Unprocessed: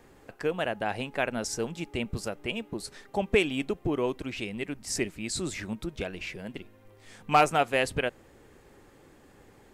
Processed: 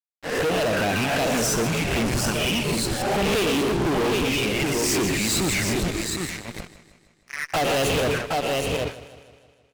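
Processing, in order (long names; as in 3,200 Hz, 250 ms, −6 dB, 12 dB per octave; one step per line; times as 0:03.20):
peak hold with a rise ahead of every peak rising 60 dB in 0.61 s
noise gate −46 dBFS, range −14 dB
0:05.91–0:07.53: flat-topped band-pass 1,900 Hz, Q 7.9
convolution reverb RT60 0.35 s, pre-delay 113 ms, DRR 8.5 dB
pitch vibrato 0.93 Hz 85 cents
flanger swept by the level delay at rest 9.6 ms, full sweep at −23 dBFS
single-tap delay 767 ms −11 dB
fuzz pedal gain 41 dB, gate −47 dBFS
feedback echo with a swinging delay time 156 ms, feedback 57%, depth 63 cents, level −16 dB
level −7.5 dB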